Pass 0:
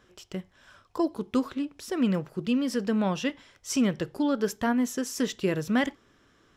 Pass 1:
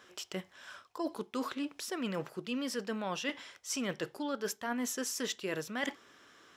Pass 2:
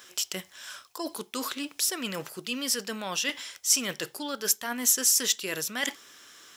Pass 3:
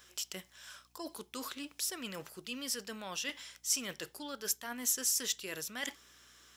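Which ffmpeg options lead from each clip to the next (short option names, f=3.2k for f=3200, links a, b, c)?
-af "highpass=f=690:p=1,areverse,acompressor=threshold=-39dB:ratio=6,areverse,volume=6dB"
-af "crystalizer=i=6:c=0"
-af "aeval=exprs='val(0)+0.000708*(sin(2*PI*60*n/s)+sin(2*PI*2*60*n/s)/2+sin(2*PI*3*60*n/s)/3+sin(2*PI*4*60*n/s)/4+sin(2*PI*5*60*n/s)/5)':c=same,volume=-9dB"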